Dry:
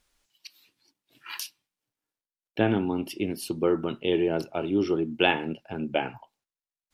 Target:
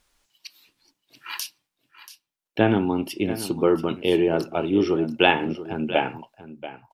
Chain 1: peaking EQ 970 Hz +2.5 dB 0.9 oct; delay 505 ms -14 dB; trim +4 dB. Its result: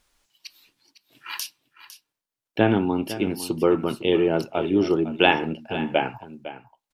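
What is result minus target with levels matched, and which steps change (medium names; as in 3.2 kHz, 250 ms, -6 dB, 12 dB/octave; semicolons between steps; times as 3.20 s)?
echo 179 ms early
change: delay 684 ms -14 dB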